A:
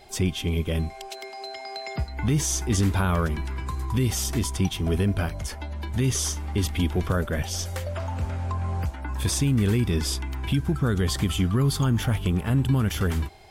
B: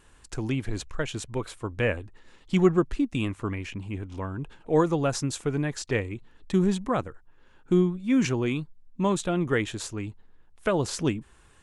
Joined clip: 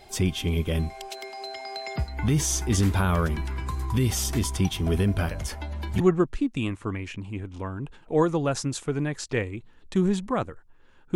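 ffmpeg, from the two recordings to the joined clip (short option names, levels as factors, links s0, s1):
-filter_complex "[1:a]asplit=2[s0][s1];[0:a]apad=whole_dur=11.15,atrim=end=11.15,atrim=end=6.002[s2];[s1]atrim=start=2.578:end=7.73[s3];[s0]atrim=start=1.89:end=2.58,asetpts=PTS-STARTPTS,volume=0.316,afade=t=in:d=0.004:c=hsin,afade=t=out:st=0.686:d=0.004:c=hsin,adelay=5310[s4];[s2][s3]acrossfade=d=0.004:c1=hsin:c2=hsin[s5];[s5][s4]amix=inputs=2:normalize=0"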